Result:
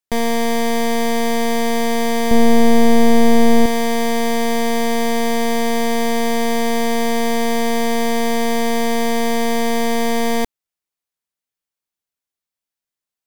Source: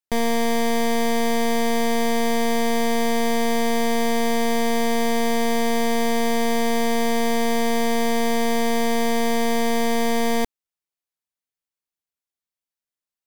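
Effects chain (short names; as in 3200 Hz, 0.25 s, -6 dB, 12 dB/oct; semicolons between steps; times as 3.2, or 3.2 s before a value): 2.31–3.66 low shelf 470 Hz +10 dB; gain +3 dB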